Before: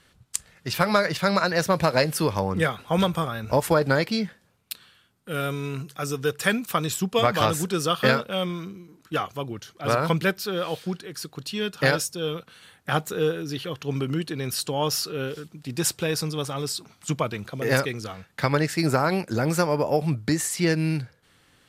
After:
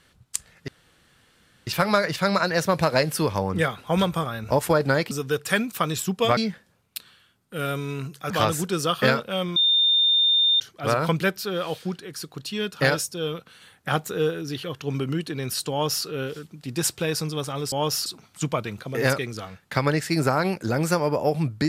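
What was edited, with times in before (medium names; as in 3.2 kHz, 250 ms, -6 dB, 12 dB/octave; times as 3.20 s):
0.68 s: insert room tone 0.99 s
6.05–7.31 s: move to 4.12 s
8.57–9.61 s: bleep 3.62 kHz -16 dBFS
14.72–15.06 s: copy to 16.73 s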